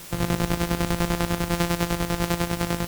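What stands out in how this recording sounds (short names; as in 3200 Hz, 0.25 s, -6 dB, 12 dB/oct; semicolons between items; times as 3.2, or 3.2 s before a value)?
a buzz of ramps at a fixed pitch in blocks of 256 samples; chopped level 10 Hz, depth 65%, duty 50%; a quantiser's noise floor 8-bit, dither triangular; WMA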